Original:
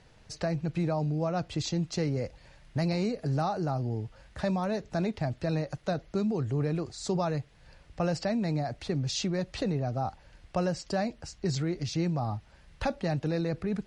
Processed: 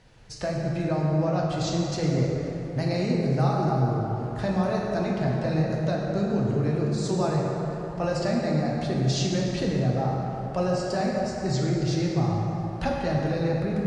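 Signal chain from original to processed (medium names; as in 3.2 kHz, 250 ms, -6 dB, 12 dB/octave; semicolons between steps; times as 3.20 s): plate-style reverb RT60 3.8 s, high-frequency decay 0.45×, DRR -3 dB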